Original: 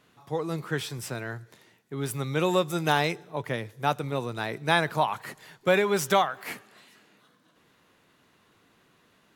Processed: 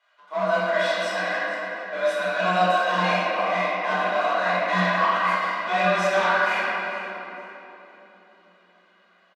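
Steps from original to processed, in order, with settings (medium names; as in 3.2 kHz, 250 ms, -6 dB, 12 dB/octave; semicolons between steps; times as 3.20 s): high-pass 770 Hz 12 dB/octave; comb 2.2 ms, depth 95%; waveshaping leveller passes 3; reverse; compression 5:1, threshold -29 dBFS, peak gain reduction 14.5 dB; reverse; hard clipper -28 dBFS, distortion -13 dB; feedback delay 457 ms, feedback 30%, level -16 dB; reverberation RT60 3.3 s, pre-delay 4 ms, DRR -11 dB; frequency shift +180 Hz; tape spacing loss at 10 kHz 24 dB; trim +2.5 dB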